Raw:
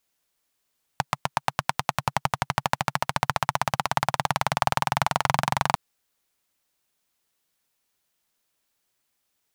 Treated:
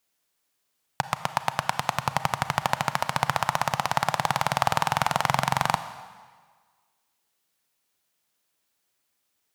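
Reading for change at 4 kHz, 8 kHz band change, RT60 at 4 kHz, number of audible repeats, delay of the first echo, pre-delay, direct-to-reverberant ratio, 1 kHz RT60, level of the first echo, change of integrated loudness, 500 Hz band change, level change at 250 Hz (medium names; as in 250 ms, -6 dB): +0.5 dB, +0.5 dB, 1.5 s, no echo, no echo, 31 ms, 11.0 dB, 1.6 s, no echo, +0.5 dB, +0.5 dB, -0.5 dB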